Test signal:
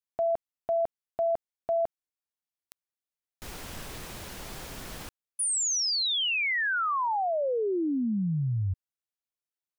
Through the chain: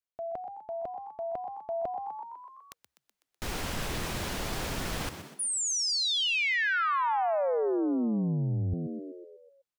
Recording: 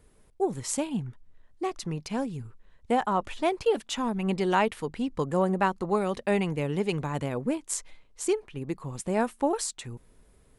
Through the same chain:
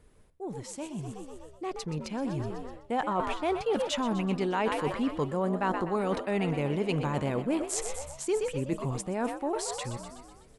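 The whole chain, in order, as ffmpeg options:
ffmpeg -i in.wav -filter_complex "[0:a]asplit=8[link_01][link_02][link_03][link_04][link_05][link_06][link_07][link_08];[link_02]adelay=125,afreqshift=65,volume=-12.5dB[link_09];[link_03]adelay=250,afreqshift=130,volume=-16.7dB[link_10];[link_04]adelay=375,afreqshift=195,volume=-20.8dB[link_11];[link_05]adelay=500,afreqshift=260,volume=-25dB[link_12];[link_06]adelay=625,afreqshift=325,volume=-29.1dB[link_13];[link_07]adelay=750,afreqshift=390,volume=-33.3dB[link_14];[link_08]adelay=875,afreqshift=455,volume=-37.4dB[link_15];[link_01][link_09][link_10][link_11][link_12][link_13][link_14][link_15]amix=inputs=8:normalize=0,areverse,acompressor=threshold=-35dB:ratio=6:attack=13:release=178:knee=6:detection=rms,areverse,highshelf=frequency=8100:gain=-7,dynaudnorm=framelen=330:gausssize=13:maxgain=9dB" out.wav

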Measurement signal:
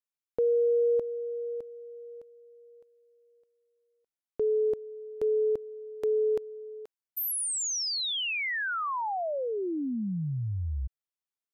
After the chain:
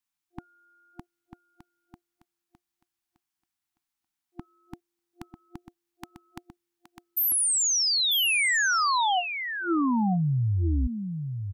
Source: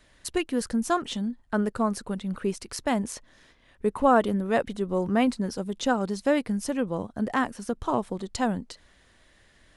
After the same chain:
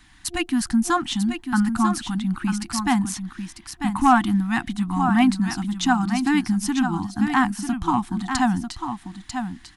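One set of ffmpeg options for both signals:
ffmpeg -i in.wav -af "aecho=1:1:945:0.398,acontrast=74,afftfilt=real='re*(1-between(b*sr/4096,350,700))':imag='im*(1-between(b*sr/4096,350,700))':win_size=4096:overlap=0.75" out.wav

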